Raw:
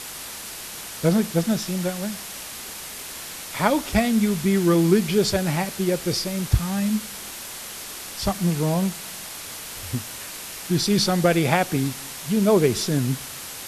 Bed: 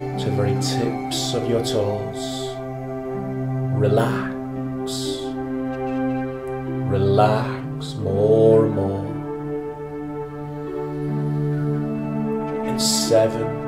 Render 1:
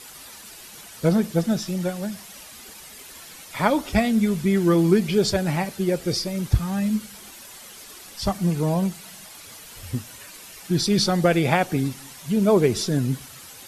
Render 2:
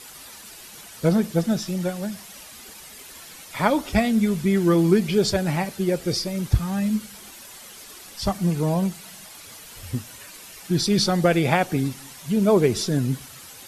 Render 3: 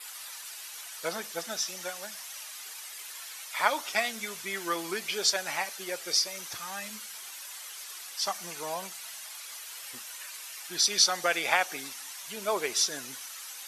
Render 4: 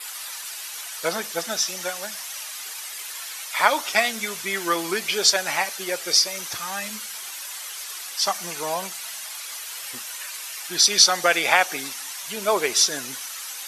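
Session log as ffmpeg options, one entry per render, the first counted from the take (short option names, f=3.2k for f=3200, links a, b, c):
-af "afftdn=nr=10:nf=-36"
-af anull
-af "highpass=1k,adynamicequalizer=threshold=0.00316:dfrequency=6000:dqfactor=5.4:tfrequency=6000:tqfactor=5.4:attack=5:release=100:ratio=0.375:range=3.5:mode=boostabove:tftype=bell"
-af "volume=8dB,alimiter=limit=-2dB:level=0:latency=1"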